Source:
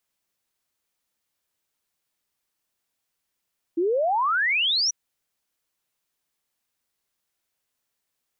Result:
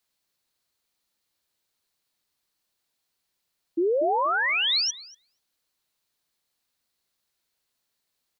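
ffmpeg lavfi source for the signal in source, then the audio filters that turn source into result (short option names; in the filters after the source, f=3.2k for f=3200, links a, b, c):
-f lavfi -i "aevalsrc='0.106*clip(min(t,1.14-t)/0.01,0,1)*sin(2*PI*320*1.14/log(6000/320)*(exp(log(6000/320)*t/1.14)-1))':d=1.14:s=44100"
-filter_complex "[0:a]equalizer=f=4.2k:w=3.3:g=7,acrossover=split=410[a][b];[b]acompressor=threshold=-23dB:ratio=4[c];[a][c]amix=inputs=2:normalize=0,asplit=2[d][e];[e]adelay=239,lowpass=f=830:p=1,volume=-6dB,asplit=2[f][g];[g]adelay=239,lowpass=f=830:p=1,volume=0.22,asplit=2[h][i];[i]adelay=239,lowpass=f=830:p=1,volume=0.22[j];[d][f][h][j]amix=inputs=4:normalize=0"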